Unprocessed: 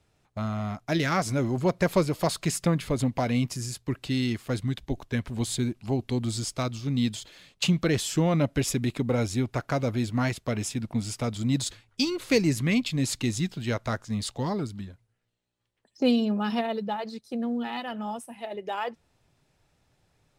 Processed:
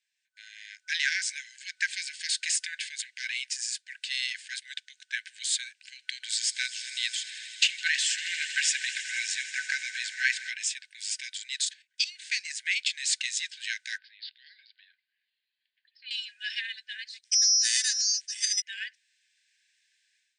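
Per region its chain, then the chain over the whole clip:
5.92–10.50 s: peaking EQ 570 Hz +14 dB 2.7 oct + echo with a slow build-up 80 ms, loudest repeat 5, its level -18 dB
11.65–12.76 s: block-companded coder 7-bit + level held to a coarse grid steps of 12 dB
13.98–16.11 s: steep low-pass 4.8 kHz 96 dB/octave + compression 1.5:1, threshold -58 dBFS
17.24–18.62 s: treble shelf 2.1 kHz +8.5 dB + careless resampling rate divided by 8×, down filtered, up zero stuff
whole clip: FFT band-pass 1.5–9.3 kHz; level rider gain up to 12.5 dB; trim -7 dB

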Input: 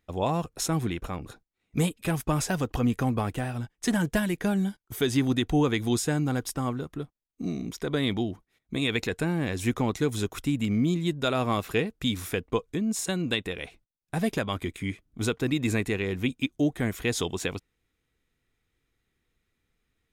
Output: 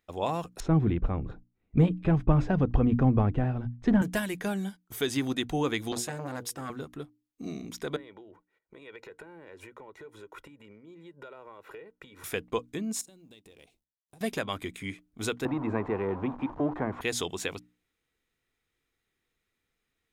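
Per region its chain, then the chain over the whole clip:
0.60–4.02 s: low-pass 3.6 kHz + tilt EQ -4.5 dB/octave
5.92–6.70 s: high-pass 48 Hz 24 dB/octave + hum notches 60/120/180/240/300/360/420/480 Hz + transformer saturation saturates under 760 Hz
7.96–12.24 s: three-band isolator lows -13 dB, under 210 Hz, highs -19 dB, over 2.2 kHz + compression 16:1, threshold -40 dBFS + comb 2.1 ms, depth 62%
13.01–14.21 s: companding laws mixed up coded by A + peaking EQ 1.6 kHz -13 dB 1.7 oct + compression 8:1, threshold -46 dBFS
15.45–17.01 s: jump at every zero crossing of -34 dBFS + resonant low-pass 980 Hz, resonance Q 3.7 + three bands compressed up and down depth 40%
whole clip: bass shelf 230 Hz -8 dB; hum notches 60/120/180/240/300 Hz; trim -1.5 dB

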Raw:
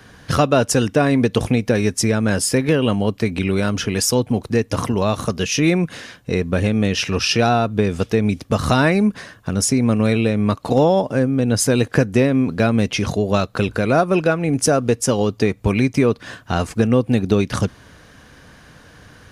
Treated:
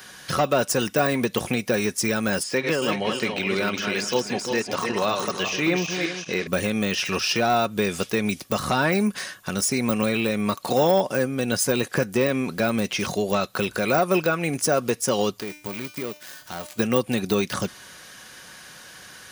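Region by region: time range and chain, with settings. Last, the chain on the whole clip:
2.43–6.47 s: backward echo that repeats 191 ms, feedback 48%, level -6 dB + high-pass 210 Hz 6 dB/octave + distance through air 110 m
15.40–16.79 s: dead-time distortion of 0.17 ms + upward compressor, threshold -28 dBFS + feedback comb 300 Hz, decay 0.48 s, mix 70%
whole clip: comb 5.4 ms, depth 31%; de-esser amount 95%; tilt EQ +3.5 dB/octave

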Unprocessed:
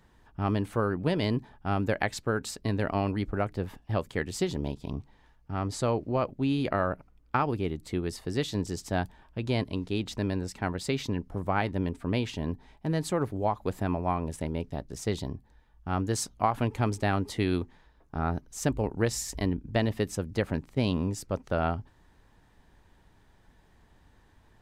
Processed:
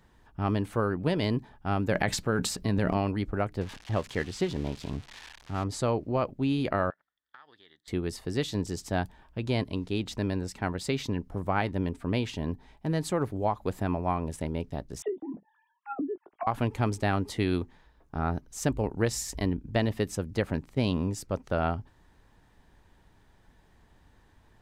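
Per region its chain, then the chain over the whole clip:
1.91–2.97 s: peaking EQ 180 Hz +7 dB 0.36 oct + transient shaper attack 0 dB, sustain +10 dB
3.61–5.64 s: zero-crossing glitches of -25.5 dBFS + low-pass 3.5 kHz
6.90–7.88 s: two resonant band-passes 2.5 kHz, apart 0.94 oct + compression 2.5:1, threshold -52 dBFS
15.02–16.47 s: formants replaced by sine waves + low-pass that closes with the level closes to 320 Hz, closed at -27.5 dBFS + doubling 19 ms -12 dB
whole clip: none

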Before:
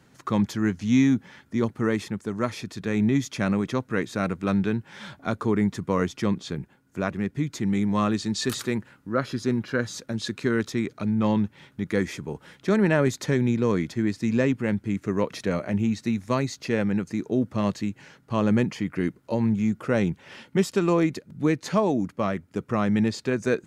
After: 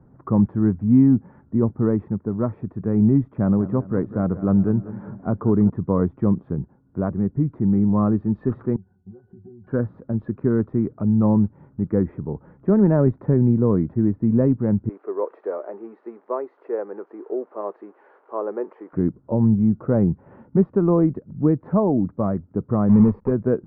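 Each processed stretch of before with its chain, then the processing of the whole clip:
3.29–5.70 s: treble shelf 4.4 kHz -4.5 dB + feedback delay 193 ms, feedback 53%, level -15 dB
8.76–9.67 s: compression 8:1, threshold -35 dBFS + pitch-class resonator F#, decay 0.13 s
14.89–18.93 s: zero-crossing glitches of -25.5 dBFS + Chebyshev high-pass 380 Hz, order 4
22.89–23.31 s: block-companded coder 3-bit + rippled EQ curve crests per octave 0.87, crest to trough 8 dB
whole clip: low-pass 1.2 kHz 24 dB/octave; tilt EQ -2.5 dB/octave

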